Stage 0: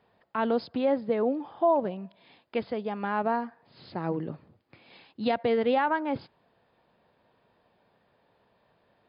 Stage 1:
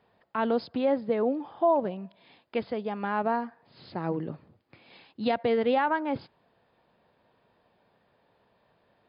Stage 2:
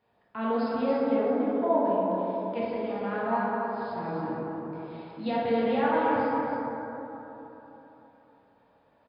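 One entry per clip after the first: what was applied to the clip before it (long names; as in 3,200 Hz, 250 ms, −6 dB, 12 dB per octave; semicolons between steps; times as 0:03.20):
no processing that can be heard
single-tap delay 281 ms −7 dB; dense smooth reverb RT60 3.7 s, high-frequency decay 0.3×, DRR −7.5 dB; level −8.5 dB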